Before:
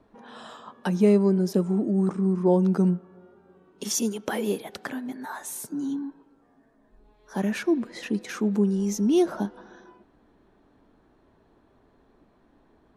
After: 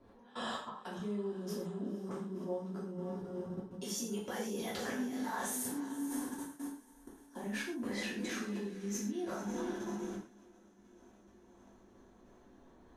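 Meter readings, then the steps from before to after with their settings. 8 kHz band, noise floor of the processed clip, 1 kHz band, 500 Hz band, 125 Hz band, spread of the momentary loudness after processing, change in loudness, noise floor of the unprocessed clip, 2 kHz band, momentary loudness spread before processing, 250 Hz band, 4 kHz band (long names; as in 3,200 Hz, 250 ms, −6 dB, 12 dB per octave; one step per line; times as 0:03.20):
−7.5 dB, −62 dBFS, −7.0 dB, −14.0 dB, −17.0 dB, 7 LU, −14.5 dB, −62 dBFS, −5.5 dB, 15 LU, −14.0 dB, −6.0 dB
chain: reversed playback
downward compressor 8 to 1, threshold −32 dBFS, peak gain reduction 17.5 dB
reversed playback
feedback delay with all-pass diffusion 503 ms, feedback 60%, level −9.5 dB
output level in coarse steps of 22 dB
reverb whose tail is shaped and stops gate 160 ms falling, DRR −6 dB
level −1.5 dB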